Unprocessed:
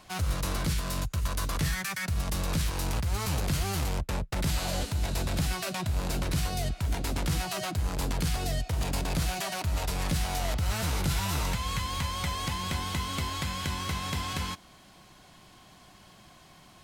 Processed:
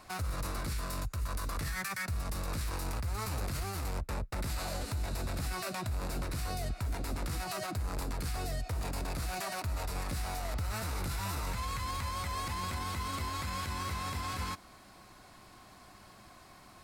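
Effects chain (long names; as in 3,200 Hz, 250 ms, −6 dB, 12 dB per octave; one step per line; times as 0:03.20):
thirty-one-band graphic EQ 160 Hz −9 dB, 1,250 Hz +4 dB, 3,150 Hz −9 dB, 6,300 Hz −4 dB
brickwall limiter −27.5 dBFS, peak gain reduction 9.5 dB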